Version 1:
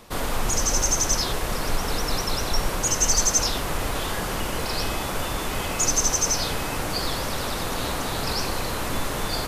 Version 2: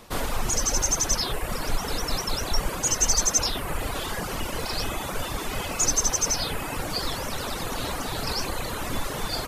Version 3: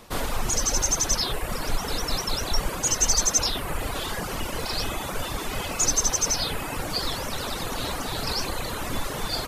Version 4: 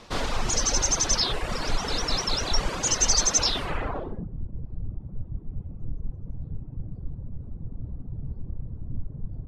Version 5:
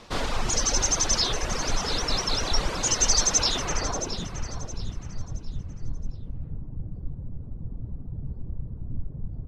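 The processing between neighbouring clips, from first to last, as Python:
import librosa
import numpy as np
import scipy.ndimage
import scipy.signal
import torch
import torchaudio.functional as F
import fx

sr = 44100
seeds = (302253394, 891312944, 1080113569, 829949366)

y1 = fx.dereverb_blind(x, sr, rt60_s=1.1)
y2 = fx.dynamic_eq(y1, sr, hz=3900.0, q=2.5, threshold_db=-40.0, ratio=4.0, max_db=3)
y3 = fx.filter_sweep_lowpass(y2, sr, from_hz=5400.0, to_hz=130.0, start_s=3.62, end_s=4.31, q=1.2)
y4 = fx.echo_feedback(y3, sr, ms=670, feedback_pct=34, wet_db=-11.0)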